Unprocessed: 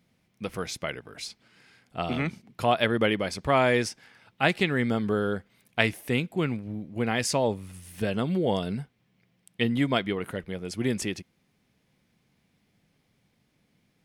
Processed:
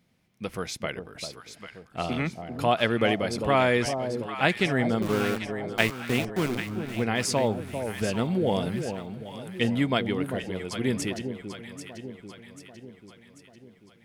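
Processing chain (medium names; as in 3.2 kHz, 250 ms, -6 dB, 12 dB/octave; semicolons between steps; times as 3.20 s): 5.02–6.58 s: small samples zeroed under -28 dBFS; echo whose repeats swap between lows and highs 395 ms, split 860 Hz, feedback 71%, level -7 dB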